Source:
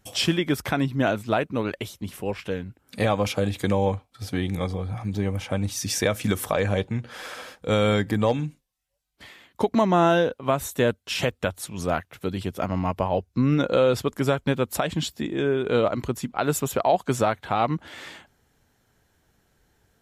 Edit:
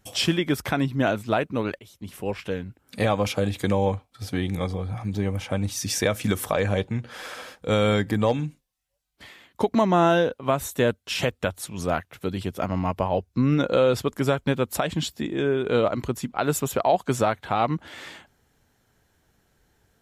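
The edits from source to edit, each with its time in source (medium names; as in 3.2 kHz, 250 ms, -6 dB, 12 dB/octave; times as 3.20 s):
1.79–2.26 s: fade in, from -20.5 dB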